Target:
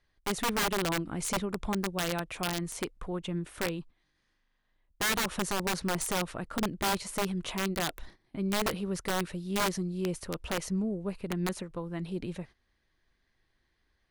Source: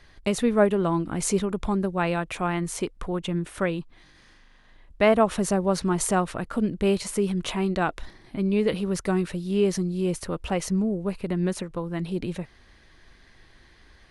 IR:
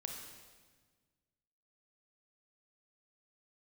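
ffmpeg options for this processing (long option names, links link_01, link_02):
-af "aeval=exprs='(mod(6.68*val(0)+1,2)-1)/6.68':channel_layout=same,agate=range=-14dB:threshold=-41dB:ratio=16:detection=peak,volume=-6.5dB"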